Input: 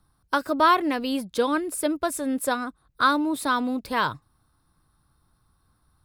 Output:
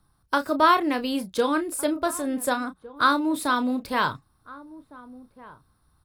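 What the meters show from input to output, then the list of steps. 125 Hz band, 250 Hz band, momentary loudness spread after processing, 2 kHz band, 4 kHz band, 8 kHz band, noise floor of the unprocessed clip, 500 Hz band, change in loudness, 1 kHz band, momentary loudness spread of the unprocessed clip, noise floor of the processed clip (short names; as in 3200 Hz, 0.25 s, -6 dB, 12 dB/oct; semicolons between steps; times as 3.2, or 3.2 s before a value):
0.0 dB, +0.5 dB, 9 LU, +0.5 dB, +0.5 dB, +0.5 dB, -68 dBFS, +0.5 dB, +0.5 dB, +0.5 dB, 8 LU, -67 dBFS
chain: doubler 32 ms -10.5 dB; outdoor echo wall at 250 m, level -19 dB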